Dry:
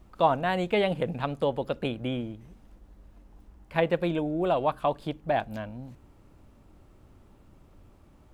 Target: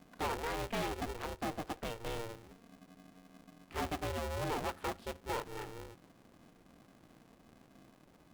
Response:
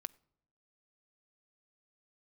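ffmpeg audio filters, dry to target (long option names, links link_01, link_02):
-filter_complex "[0:a]asettb=1/sr,asplit=3[link_01][link_02][link_03];[link_01]atrim=end=1.144[link_04];[link_02]atrim=start=1.14:end=2.06,asetpts=PTS-STARTPTS,afade=type=in:duration=0.004:curve=qsin,afade=type=out:start_time=0.916:duration=0.004:curve=qsin,highpass=150,lowpass=5900[link_05];[link_03]atrim=start=2.056[link_06];[link_04][link_05]acrossfade=duration=0.004:curve1=hsin:curve2=qsin[link_07];[link_07][link_06]acrossfade=duration=0.004:curve1=qsin:curve2=hsin,asoftclip=type=tanh:threshold=-25dB,aeval=exprs='val(0)*sgn(sin(2*PI*230*n/s))':channel_layout=same,volume=-7dB"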